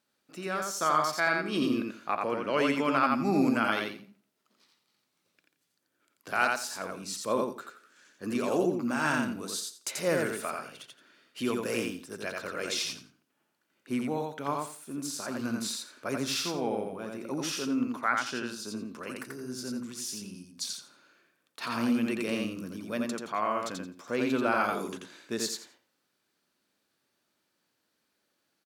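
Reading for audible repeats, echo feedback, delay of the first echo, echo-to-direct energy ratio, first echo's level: 3, 20%, 86 ms, -3.0 dB, -3.0 dB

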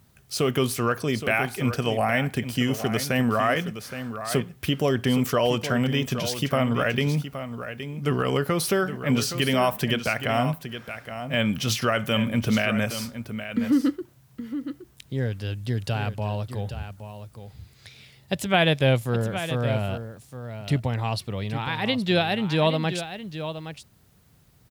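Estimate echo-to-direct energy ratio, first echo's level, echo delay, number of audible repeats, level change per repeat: -10.5 dB, -10.5 dB, 0.819 s, 1, no steady repeat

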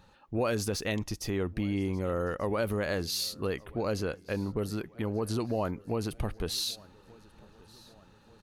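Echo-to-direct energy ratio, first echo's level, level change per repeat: -22.5 dB, -24.0 dB, -5.5 dB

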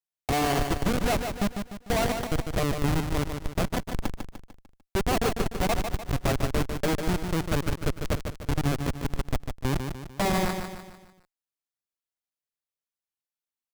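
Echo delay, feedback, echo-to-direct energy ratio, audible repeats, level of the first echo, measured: 0.149 s, 45%, -5.5 dB, 5, -6.5 dB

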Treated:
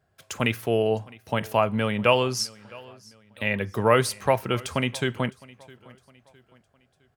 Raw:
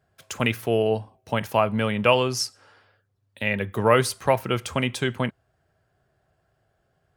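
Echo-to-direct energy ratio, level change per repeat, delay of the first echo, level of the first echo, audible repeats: -22.0 dB, -8.0 dB, 0.66 s, -23.0 dB, 2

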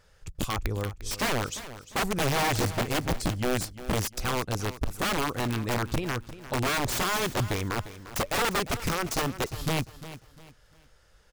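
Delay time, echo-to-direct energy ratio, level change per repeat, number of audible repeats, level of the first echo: 0.35 s, -14.0 dB, -10.0 dB, 3, -14.5 dB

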